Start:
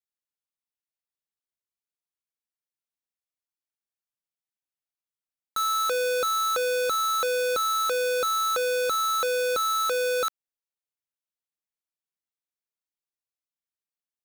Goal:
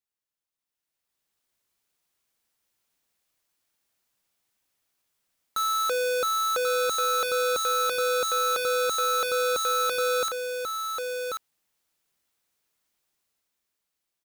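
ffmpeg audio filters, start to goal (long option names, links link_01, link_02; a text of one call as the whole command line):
ffmpeg -i in.wav -filter_complex "[0:a]dynaudnorm=framelen=200:gausssize=11:maxgain=14dB,aeval=exprs='(mod(8.41*val(0)+1,2)-1)/8.41':channel_layout=same,asplit=2[link_01][link_02];[link_02]aecho=0:1:1088:0.531[link_03];[link_01][link_03]amix=inputs=2:normalize=0,volume=2dB" out.wav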